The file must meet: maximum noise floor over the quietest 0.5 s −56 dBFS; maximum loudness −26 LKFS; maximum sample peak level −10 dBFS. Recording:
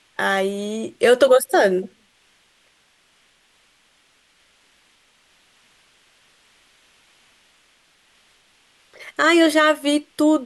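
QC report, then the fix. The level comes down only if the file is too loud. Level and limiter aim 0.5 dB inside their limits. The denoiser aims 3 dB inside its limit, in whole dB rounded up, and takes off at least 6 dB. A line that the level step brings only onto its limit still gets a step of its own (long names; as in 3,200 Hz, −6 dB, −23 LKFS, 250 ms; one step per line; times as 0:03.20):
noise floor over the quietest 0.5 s −60 dBFS: in spec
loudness −17.5 LKFS: out of spec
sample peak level −4.0 dBFS: out of spec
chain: level −9 dB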